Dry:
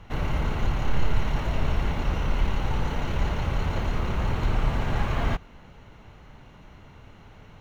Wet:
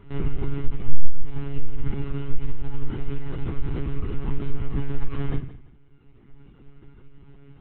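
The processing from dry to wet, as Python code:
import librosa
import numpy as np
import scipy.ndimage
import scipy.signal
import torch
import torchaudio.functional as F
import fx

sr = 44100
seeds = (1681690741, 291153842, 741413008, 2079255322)

p1 = fx.dereverb_blind(x, sr, rt60_s=1.9)
p2 = fx.room_shoebox(p1, sr, seeds[0], volume_m3=270.0, walls='furnished', distance_m=2.4)
p3 = fx.lpc_monotone(p2, sr, seeds[1], pitch_hz=140.0, order=16)
p4 = np.clip(10.0 ** (9.0 / 20.0) * p3, -1.0, 1.0) / 10.0 ** (9.0 / 20.0)
p5 = p3 + (p4 * librosa.db_to_amplitude(-10.0))
p6 = fx.low_shelf_res(p5, sr, hz=480.0, db=6.0, q=3.0)
p7 = p6 + fx.echo_thinned(p6, sr, ms=171, feedback_pct=30, hz=230.0, wet_db=-16.0, dry=0)
y = p7 * librosa.db_to_amplitude(-11.5)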